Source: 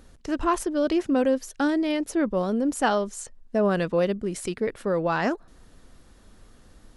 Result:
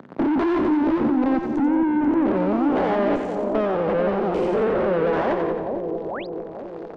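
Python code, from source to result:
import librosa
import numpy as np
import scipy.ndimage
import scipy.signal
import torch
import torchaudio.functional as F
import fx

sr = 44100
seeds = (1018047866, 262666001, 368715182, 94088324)

p1 = fx.spec_steps(x, sr, hold_ms=200)
p2 = scipy.signal.sosfilt(scipy.signal.butter(4, 120.0, 'highpass', fs=sr, output='sos'), p1)
p3 = fx.tilt_eq(p2, sr, slope=-3.0)
p4 = fx.notch(p3, sr, hz=1200.0, q=12.0)
p5 = fx.leveller(p4, sr, passes=5)
p6 = fx.rider(p5, sr, range_db=10, speed_s=0.5)
p7 = fx.filter_sweep_highpass(p6, sr, from_hz=190.0, to_hz=510.0, start_s=1.05, end_s=3.07, q=1.3)
p8 = fx.tube_stage(p7, sr, drive_db=21.0, bias=0.35)
p9 = p8 + fx.echo_split(p8, sr, split_hz=770.0, low_ms=443, high_ms=89, feedback_pct=52, wet_db=-6.0, dry=0)
p10 = fx.spec_paint(p9, sr, seeds[0], shape='rise', start_s=6.05, length_s=0.22, low_hz=320.0, high_hz=5300.0, level_db=-36.0)
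p11 = fx.spacing_loss(p10, sr, db_at_10k=32)
p12 = fx.band_squash(p11, sr, depth_pct=40)
y = F.gain(torch.from_numpy(p12), 3.0).numpy()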